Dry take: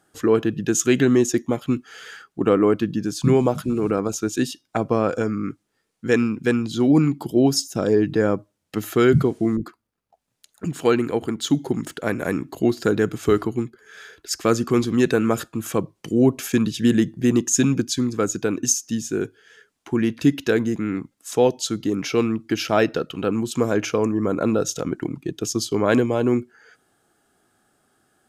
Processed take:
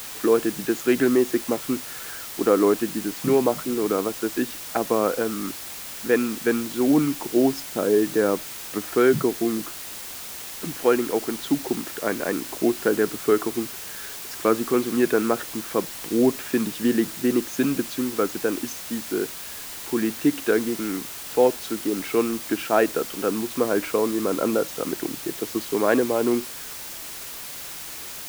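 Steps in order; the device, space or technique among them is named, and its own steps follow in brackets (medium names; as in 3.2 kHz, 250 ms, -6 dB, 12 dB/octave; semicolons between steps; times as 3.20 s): wax cylinder (band-pass 270–2200 Hz; wow and flutter; white noise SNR 12 dB)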